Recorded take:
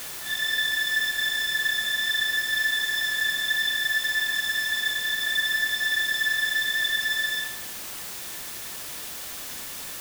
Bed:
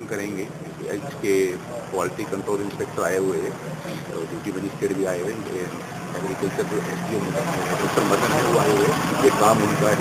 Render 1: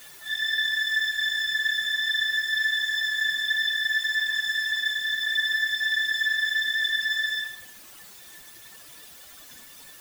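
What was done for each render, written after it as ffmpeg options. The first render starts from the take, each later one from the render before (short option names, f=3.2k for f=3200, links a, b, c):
-af "afftdn=nr=13:nf=-36"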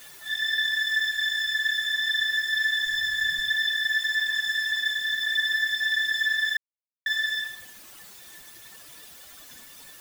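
-filter_complex "[0:a]asettb=1/sr,asplit=3[a][b][c];[a]atrim=end=1.144[d];[b]atrim=start=1.14:end=1.9,asetpts=PTS-STARTPTS,afade=t=in:d=0.004:c=qsin,afade=t=out:st=0.756:d=0.004:c=qsin,equalizer=f=300:t=o:w=1.4:g=-7.5[e];[c]atrim=start=1.896[f];[d][e]acrossfade=d=0.004:c1=hsin:c2=qsin[g];[g][f]acrossfade=d=0.004:c1=qsin:c2=hsin,asplit=3[h][i][j];[h]afade=t=out:st=2.84:d=0.02[k];[i]asubboost=boost=8:cutoff=150,afade=t=in:st=2.84:d=0.02,afade=t=out:st=3.53:d=0.02[l];[j]afade=t=in:st=3.53:d=0.02[m];[k][l][m]amix=inputs=3:normalize=0,asplit=3[n][o][p];[n]atrim=end=6.57,asetpts=PTS-STARTPTS,afade=t=out:st=6.566:d=0.004:c=hsin[q];[o]atrim=start=6.57:end=7.06,asetpts=PTS-STARTPTS,volume=0[r];[p]atrim=start=7.06,asetpts=PTS-STARTPTS,afade=t=in:d=0.004:c=hsin[s];[q][r][s]concat=n=3:v=0:a=1"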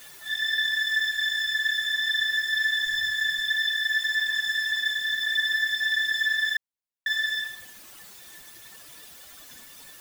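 -filter_complex "[0:a]asettb=1/sr,asplit=3[a][b][c];[a]atrim=end=3.124[d];[b]atrim=start=3.12:end=3.92,asetpts=PTS-STARTPTS,afade=t=in:d=0.004:c=qsin,afade=t=out:st=0.796:d=0.004:c=qsin,lowshelf=f=390:g=-7.5[e];[c]atrim=start=3.916[f];[d][e]acrossfade=d=0.004:c1=hsin:c2=qsin[g];[g][f]acrossfade=d=0.004:c1=qsin:c2=hsin"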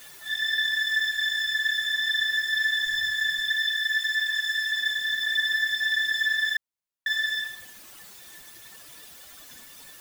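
-filter_complex "[0:a]asettb=1/sr,asplit=3[a][b][c];[a]atrim=end=3.514[d];[b]atrim=start=3.51:end=4.79,asetpts=PTS-STARTPTS,afade=t=in:d=0.004:c=qsin,afade=t=out:st=1.276:d=0.004:c=qsin,highpass=1k[e];[c]atrim=start=4.786[f];[d][e]acrossfade=d=0.004:c1=hsin:c2=qsin[g];[g][f]acrossfade=d=0.004:c1=qsin:c2=hsin"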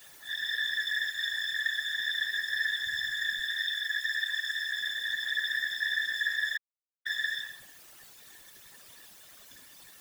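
-af "acrusher=bits=10:mix=0:aa=0.000001,afftfilt=real='hypot(re,im)*cos(2*PI*random(0))':imag='hypot(re,im)*sin(2*PI*random(1))':win_size=512:overlap=0.75"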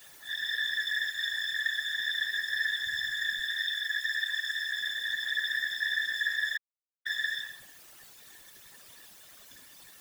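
-af anull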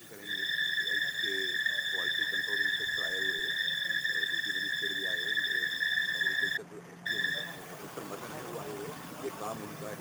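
-filter_complex "[1:a]volume=-22dB[a];[0:a][a]amix=inputs=2:normalize=0"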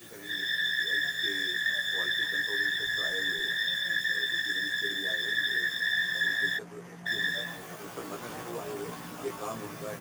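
-filter_complex "[0:a]asplit=2[a][b];[b]adelay=17,volume=-2.5dB[c];[a][c]amix=inputs=2:normalize=0"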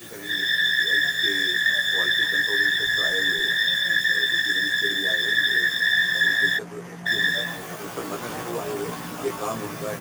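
-af "volume=8dB"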